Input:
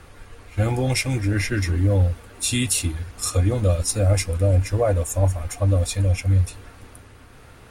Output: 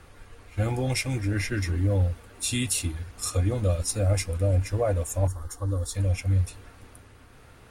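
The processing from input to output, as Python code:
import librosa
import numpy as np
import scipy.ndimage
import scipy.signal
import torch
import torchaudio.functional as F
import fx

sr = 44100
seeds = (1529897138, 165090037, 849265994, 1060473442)

y = fx.fixed_phaser(x, sr, hz=650.0, stages=6, at=(5.27, 5.95))
y = y * 10.0 ** (-5.0 / 20.0)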